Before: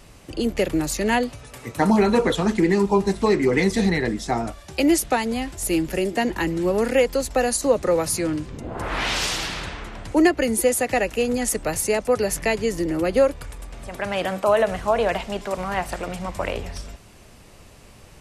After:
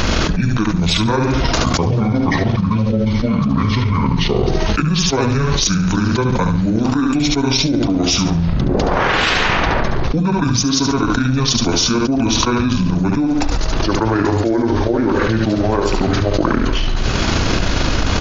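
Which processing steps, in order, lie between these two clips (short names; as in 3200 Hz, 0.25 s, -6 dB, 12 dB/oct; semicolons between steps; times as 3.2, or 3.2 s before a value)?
delay-line pitch shifter -10.5 st; on a send: feedback echo 71 ms, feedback 31%, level -6.5 dB; on the sum: transient shaper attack +6 dB, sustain -5 dB; fast leveller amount 100%; gain -5 dB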